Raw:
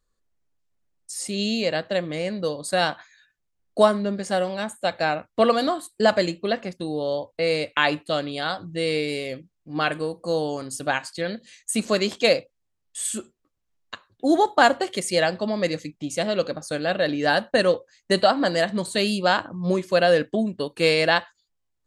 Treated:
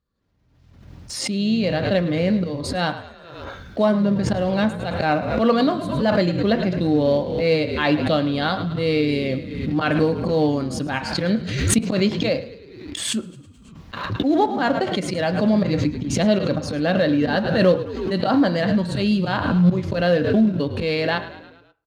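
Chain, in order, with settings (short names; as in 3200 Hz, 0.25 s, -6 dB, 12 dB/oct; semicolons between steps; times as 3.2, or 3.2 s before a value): auto swell 0.14 s; frequency-shifting echo 0.107 s, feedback 56%, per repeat -42 Hz, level -15 dB; in parallel at -10.5 dB: companded quantiser 4-bit; on the sum: HPF 84 Hz; tone controls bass +11 dB, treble +13 dB; vocal rider within 5 dB 0.5 s; air absorption 310 m; on a send at -8 dB: reverb RT60 0.45 s, pre-delay 3 ms; on the sum: backwards sustainer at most 46 dB/s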